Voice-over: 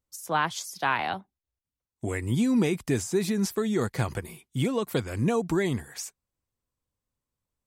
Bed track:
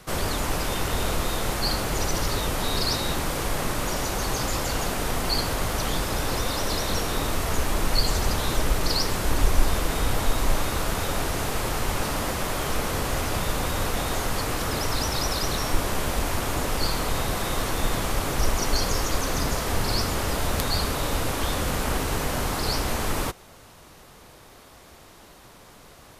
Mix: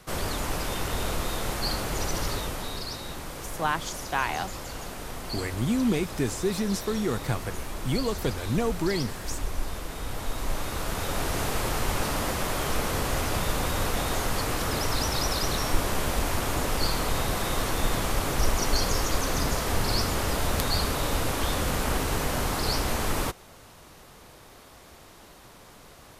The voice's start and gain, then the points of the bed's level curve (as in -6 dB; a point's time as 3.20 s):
3.30 s, -1.5 dB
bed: 2.29 s -3.5 dB
2.87 s -10.5 dB
9.95 s -10.5 dB
11.38 s -1 dB